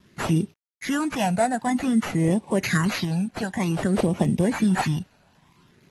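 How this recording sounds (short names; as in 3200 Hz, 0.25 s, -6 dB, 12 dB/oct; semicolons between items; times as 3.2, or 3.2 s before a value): a quantiser's noise floor 10-bit, dither none; phasing stages 12, 0.53 Hz, lowest notch 340–1500 Hz; aliases and images of a low sample rate 8700 Hz, jitter 0%; AAC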